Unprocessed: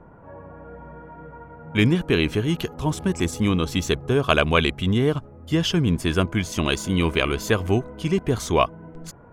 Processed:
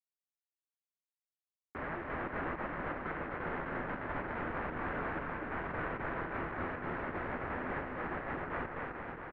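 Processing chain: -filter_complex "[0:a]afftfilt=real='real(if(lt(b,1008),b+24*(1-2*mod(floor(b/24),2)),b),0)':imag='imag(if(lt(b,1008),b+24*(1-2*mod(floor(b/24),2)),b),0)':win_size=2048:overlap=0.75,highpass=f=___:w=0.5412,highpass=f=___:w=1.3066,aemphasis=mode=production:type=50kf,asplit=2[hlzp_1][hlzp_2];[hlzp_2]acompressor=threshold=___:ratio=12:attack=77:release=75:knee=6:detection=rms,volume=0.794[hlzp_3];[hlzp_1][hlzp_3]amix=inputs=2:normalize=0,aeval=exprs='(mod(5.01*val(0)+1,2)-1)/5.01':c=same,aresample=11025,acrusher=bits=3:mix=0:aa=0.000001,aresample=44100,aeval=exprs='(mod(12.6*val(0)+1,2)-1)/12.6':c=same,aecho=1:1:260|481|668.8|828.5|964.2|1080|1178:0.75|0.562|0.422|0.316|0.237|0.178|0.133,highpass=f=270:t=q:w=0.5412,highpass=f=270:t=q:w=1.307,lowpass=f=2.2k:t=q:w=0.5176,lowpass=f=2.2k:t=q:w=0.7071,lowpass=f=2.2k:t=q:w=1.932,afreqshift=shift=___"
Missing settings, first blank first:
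76, 76, 0.0447, -350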